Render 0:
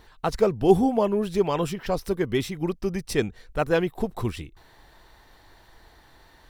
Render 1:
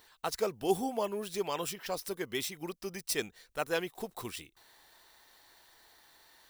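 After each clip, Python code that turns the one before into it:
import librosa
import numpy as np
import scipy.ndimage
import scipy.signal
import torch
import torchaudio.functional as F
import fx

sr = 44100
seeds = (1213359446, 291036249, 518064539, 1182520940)

y = scipy.signal.medfilt(x, 3)
y = fx.riaa(y, sr, side='recording')
y = y * librosa.db_to_amplitude(-8.0)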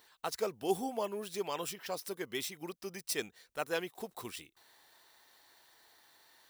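y = fx.highpass(x, sr, hz=130.0, slope=6)
y = y * librosa.db_to_amplitude(-2.5)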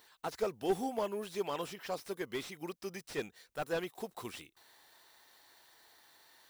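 y = fx.slew_limit(x, sr, full_power_hz=26.0)
y = y * librosa.db_to_amplitude(1.0)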